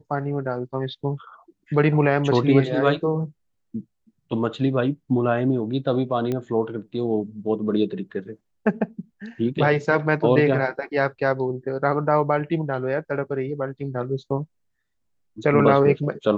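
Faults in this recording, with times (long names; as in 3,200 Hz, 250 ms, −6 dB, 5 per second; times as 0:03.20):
0:06.32: click −15 dBFS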